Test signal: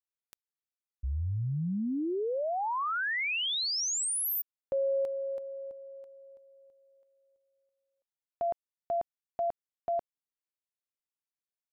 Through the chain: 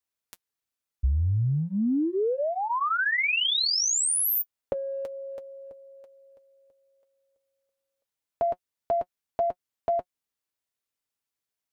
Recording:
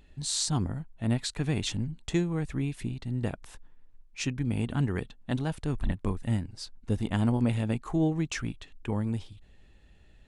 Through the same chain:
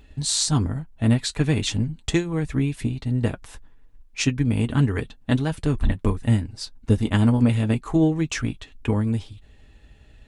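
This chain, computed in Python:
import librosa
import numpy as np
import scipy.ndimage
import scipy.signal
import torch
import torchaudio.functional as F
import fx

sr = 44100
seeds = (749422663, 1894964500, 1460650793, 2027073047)

y = fx.transient(x, sr, attack_db=4, sustain_db=0)
y = fx.notch_comb(y, sr, f0_hz=180.0)
y = fx.dynamic_eq(y, sr, hz=760.0, q=2.1, threshold_db=-45.0, ratio=4.0, max_db=-4)
y = y * 10.0 ** (7.5 / 20.0)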